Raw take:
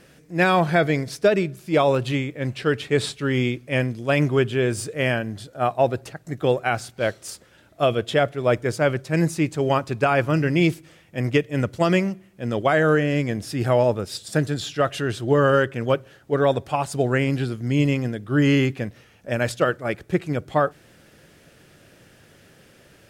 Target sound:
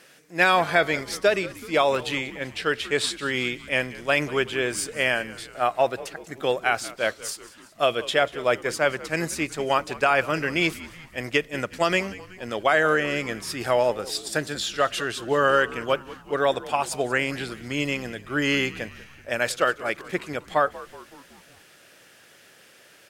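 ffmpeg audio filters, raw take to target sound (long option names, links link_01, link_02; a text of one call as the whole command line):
ffmpeg -i in.wav -filter_complex "[0:a]highpass=frequency=1000:poles=1,asplit=6[link_01][link_02][link_03][link_04][link_05][link_06];[link_02]adelay=187,afreqshift=-93,volume=-18dB[link_07];[link_03]adelay=374,afreqshift=-186,volume=-23dB[link_08];[link_04]adelay=561,afreqshift=-279,volume=-28.1dB[link_09];[link_05]adelay=748,afreqshift=-372,volume=-33.1dB[link_10];[link_06]adelay=935,afreqshift=-465,volume=-38.1dB[link_11];[link_01][link_07][link_08][link_09][link_10][link_11]amix=inputs=6:normalize=0,volume=3.5dB" out.wav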